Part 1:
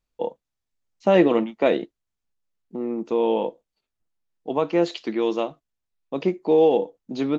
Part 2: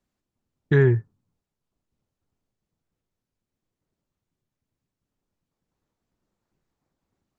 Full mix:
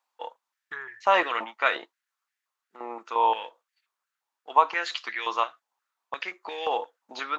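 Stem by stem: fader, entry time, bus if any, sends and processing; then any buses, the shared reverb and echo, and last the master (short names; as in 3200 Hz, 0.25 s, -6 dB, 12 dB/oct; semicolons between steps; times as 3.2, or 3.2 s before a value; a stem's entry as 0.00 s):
+1.0 dB, 0.00 s, no send, dry
-2.5 dB, 0.00 s, no send, limiter -14 dBFS, peak gain reduction 5.5 dB; compressor, threshold -24 dBFS, peak gain reduction 6.5 dB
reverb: off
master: stepped high-pass 5.7 Hz 890–1800 Hz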